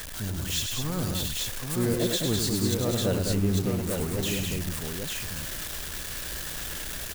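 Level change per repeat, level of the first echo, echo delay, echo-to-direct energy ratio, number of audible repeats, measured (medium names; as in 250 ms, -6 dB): no regular repeats, -5.5 dB, 102 ms, 0.0 dB, 3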